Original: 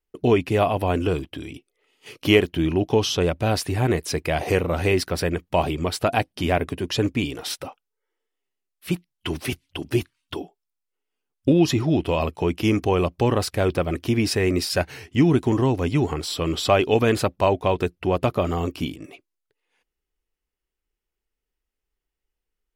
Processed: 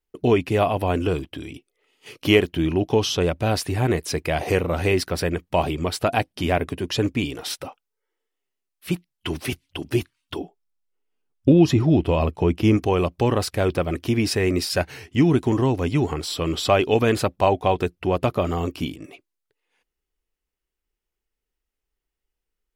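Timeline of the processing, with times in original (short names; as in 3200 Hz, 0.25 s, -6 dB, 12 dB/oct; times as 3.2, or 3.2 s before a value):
10.38–12.77 tilt -1.5 dB/oct
17.38–17.82 small resonant body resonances 760/3300 Hz, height 7 dB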